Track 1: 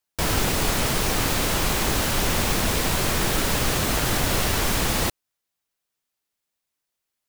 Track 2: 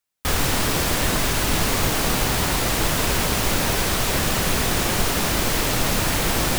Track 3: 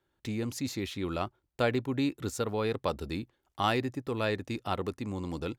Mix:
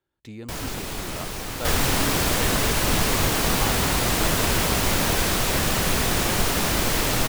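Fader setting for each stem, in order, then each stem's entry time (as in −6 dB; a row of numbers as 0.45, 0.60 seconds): −9.0, −1.0, −5.0 decibels; 0.30, 1.40, 0.00 seconds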